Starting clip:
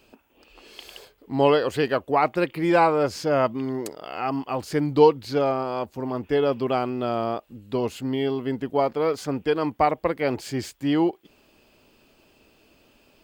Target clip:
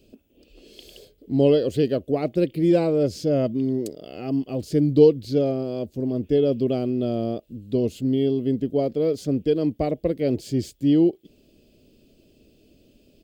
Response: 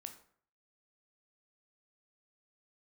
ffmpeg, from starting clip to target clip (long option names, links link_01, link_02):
-af "firequalizer=gain_entry='entry(240,0);entry(620,-7);entry(880,-27);entry(3300,-8)':delay=0.05:min_phase=1,volume=5.5dB"